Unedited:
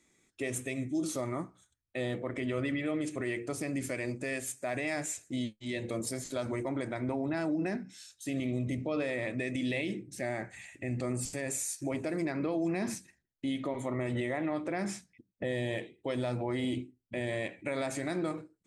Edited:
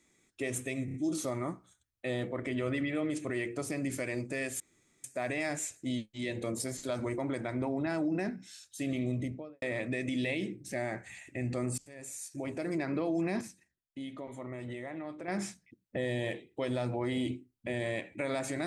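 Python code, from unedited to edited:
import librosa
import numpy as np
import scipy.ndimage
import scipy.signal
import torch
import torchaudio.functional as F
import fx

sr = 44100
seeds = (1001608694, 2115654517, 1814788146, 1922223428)

y = fx.studio_fade_out(x, sr, start_s=8.59, length_s=0.5)
y = fx.edit(y, sr, fx.stutter(start_s=0.85, slice_s=0.03, count=4),
    fx.insert_room_tone(at_s=4.51, length_s=0.44),
    fx.fade_in_from(start_s=11.25, length_s=1.05, floor_db=-22.5),
    fx.clip_gain(start_s=12.88, length_s=1.87, db=-8.0), tone=tone)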